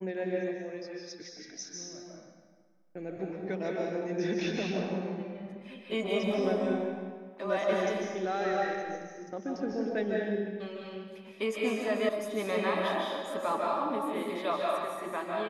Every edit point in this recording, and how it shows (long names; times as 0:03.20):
0:12.09: cut off before it has died away